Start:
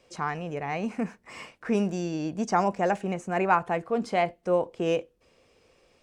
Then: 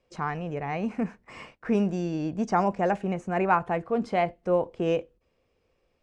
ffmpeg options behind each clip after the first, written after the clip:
-af "agate=range=-10dB:threshold=-50dB:ratio=16:detection=peak,lowpass=f=3k:p=1,lowshelf=f=97:g=9"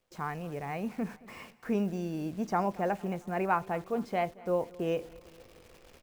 -af "areverse,acompressor=mode=upward:threshold=-34dB:ratio=2.5,areverse,acrusher=bits=9:dc=4:mix=0:aa=0.000001,aecho=1:1:225|450|675|900:0.0794|0.0461|0.0267|0.0155,volume=-5.5dB"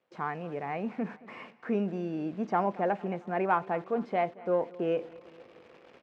-filter_complex "[0:a]asplit=2[a][b];[b]asoftclip=type=tanh:threshold=-28dB,volume=-7dB[c];[a][c]amix=inputs=2:normalize=0,highpass=200,lowpass=2.6k"

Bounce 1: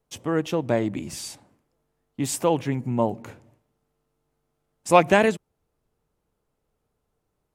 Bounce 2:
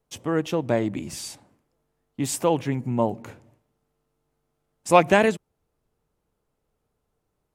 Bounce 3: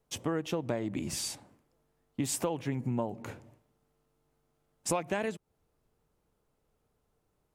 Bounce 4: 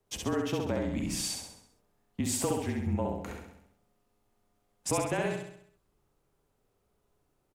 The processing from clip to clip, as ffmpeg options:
-af anull
-af "acompressor=threshold=-28dB:ratio=12"
-filter_complex "[0:a]afreqshift=-35,asplit=2[a][b];[b]aecho=0:1:66|132|198|264|330|396|462:0.708|0.354|0.177|0.0885|0.0442|0.0221|0.0111[c];[a][c]amix=inputs=2:normalize=0"

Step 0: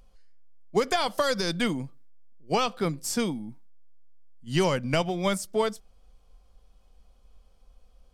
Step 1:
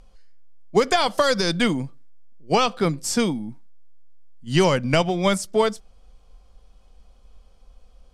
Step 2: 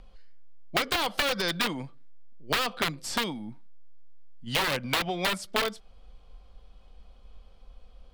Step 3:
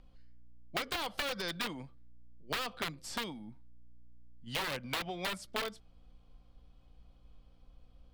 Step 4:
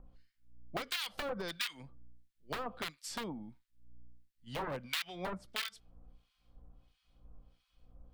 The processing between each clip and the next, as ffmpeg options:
-af "lowpass=10k,volume=6dB"
-filter_complex "[0:a]aeval=exprs='(mod(4.22*val(0)+1,2)-1)/4.22':c=same,acrossover=split=510|2400[a][b][c];[a]acompressor=threshold=-36dB:ratio=4[d];[b]acompressor=threshold=-29dB:ratio=4[e];[c]acompressor=threshold=-26dB:ratio=4[f];[d][e][f]amix=inputs=3:normalize=0,highshelf=f=4.9k:t=q:w=1.5:g=-7"
-af "aeval=exprs='val(0)+0.00178*(sin(2*PI*60*n/s)+sin(2*PI*2*60*n/s)/2+sin(2*PI*3*60*n/s)/3+sin(2*PI*4*60*n/s)/4+sin(2*PI*5*60*n/s)/5)':c=same,volume=-9dB"
-filter_complex "[0:a]acrossover=split=1400[a][b];[a]aeval=exprs='val(0)*(1-1/2+1/2*cos(2*PI*1.5*n/s))':c=same[c];[b]aeval=exprs='val(0)*(1-1/2-1/2*cos(2*PI*1.5*n/s))':c=same[d];[c][d]amix=inputs=2:normalize=0,volume=2.5dB"

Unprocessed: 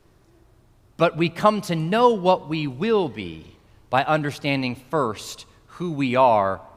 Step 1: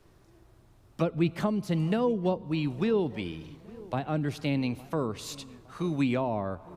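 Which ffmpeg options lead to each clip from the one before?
-filter_complex "[0:a]acrossover=split=420[a][b];[b]acompressor=threshold=-32dB:ratio=8[c];[a][c]amix=inputs=2:normalize=0,asplit=2[d][e];[e]adelay=862,lowpass=f=1.2k:p=1,volume=-20dB,asplit=2[f][g];[g]adelay=862,lowpass=f=1.2k:p=1,volume=0.52,asplit=2[h][i];[i]adelay=862,lowpass=f=1.2k:p=1,volume=0.52,asplit=2[j][k];[k]adelay=862,lowpass=f=1.2k:p=1,volume=0.52[l];[d][f][h][j][l]amix=inputs=5:normalize=0,volume=-2.5dB"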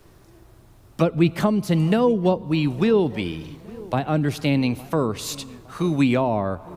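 -af "highshelf=f=11k:g=8,volume=8dB"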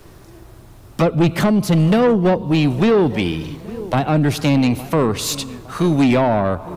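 -af "asoftclip=type=tanh:threshold=-18dB,volume=8.5dB"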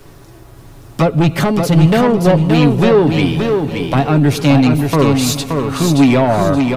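-af "aecho=1:1:7.2:0.38,aecho=1:1:574|1148|1722|2296:0.562|0.157|0.0441|0.0123,volume=2.5dB"

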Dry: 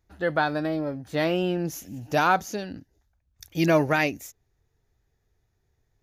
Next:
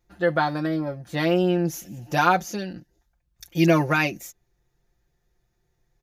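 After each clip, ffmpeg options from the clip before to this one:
-af "aecho=1:1:5.7:0.76"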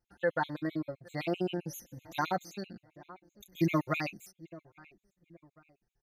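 -filter_complex "[0:a]afftfilt=real='re*pow(10,7/40*sin(2*PI*(1.1*log(max(b,1)*sr/1024/100)/log(2)-(0.69)*(pts-256)/sr)))':imag='im*pow(10,7/40*sin(2*PI*(1.1*log(max(b,1)*sr/1024/100)/log(2)-(0.69)*(pts-256)/sr)))':win_size=1024:overlap=0.75,asplit=2[a][b];[b]adelay=828,lowpass=f=1.9k:p=1,volume=-21dB,asplit=2[c][d];[d]adelay=828,lowpass=f=1.9k:p=1,volume=0.42,asplit=2[e][f];[f]adelay=828,lowpass=f=1.9k:p=1,volume=0.42[g];[a][c][e][g]amix=inputs=4:normalize=0,afftfilt=real='re*gt(sin(2*PI*7.7*pts/sr)*(1-2*mod(floor(b*sr/1024/2100),2)),0)':imag='im*gt(sin(2*PI*7.7*pts/sr)*(1-2*mod(floor(b*sr/1024/2100),2)),0)':win_size=1024:overlap=0.75,volume=-9dB"

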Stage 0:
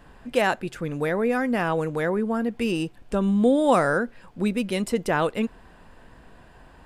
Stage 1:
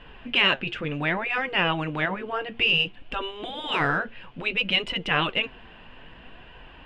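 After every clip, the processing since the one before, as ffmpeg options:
-af "flanger=delay=2:depth=7:regen=64:speed=0.61:shape=sinusoidal,afftfilt=real='re*lt(hypot(re,im),0.2)':imag='im*lt(hypot(re,im),0.2)':win_size=1024:overlap=0.75,lowpass=f=2.9k:t=q:w=5.1,volume=5.5dB"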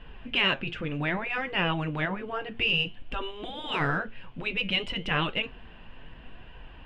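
-af "lowshelf=f=180:g=8.5,flanger=delay=4.4:depth=5.8:regen=-83:speed=0.53:shape=triangular"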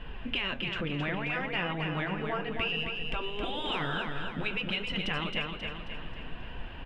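-filter_complex "[0:a]acompressor=threshold=-35dB:ratio=6,asplit=2[a][b];[b]aecho=0:1:268|536|804|1072|1340|1608:0.562|0.281|0.141|0.0703|0.0351|0.0176[c];[a][c]amix=inputs=2:normalize=0,volume=4.5dB"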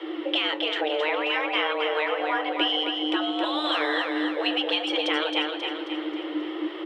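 -af "afreqshift=300,volume=6.5dB"

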